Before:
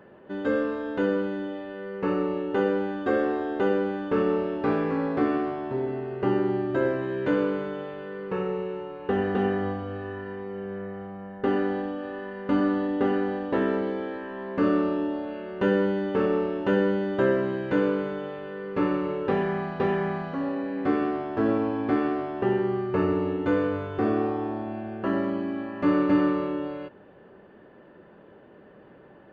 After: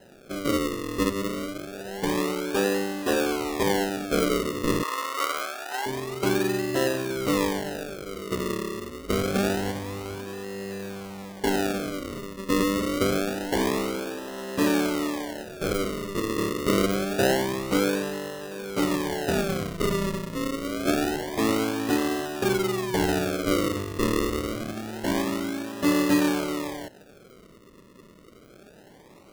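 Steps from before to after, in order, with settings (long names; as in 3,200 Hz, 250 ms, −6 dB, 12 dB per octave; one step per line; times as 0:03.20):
0:15.44–0:16.38: spectral tilt +3.5 dB per octave
sample-and-hold swept by an LFO 38×, swing 100% 0.26 Hz
0:04.83–0:05.86: high-pass with resonance 940 Hz, resonance Q 2.3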